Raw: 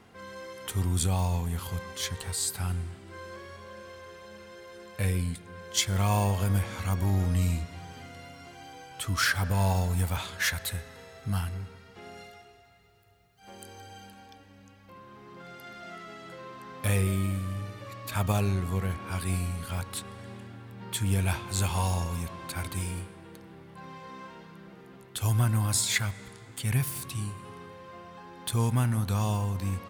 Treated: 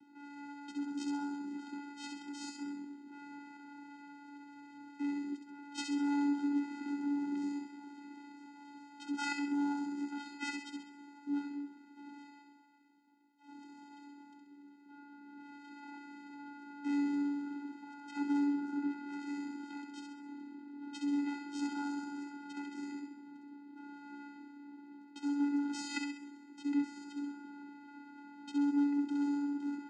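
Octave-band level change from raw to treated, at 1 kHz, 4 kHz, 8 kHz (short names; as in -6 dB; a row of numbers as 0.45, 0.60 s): -9.0, -15.0, -20.5 dB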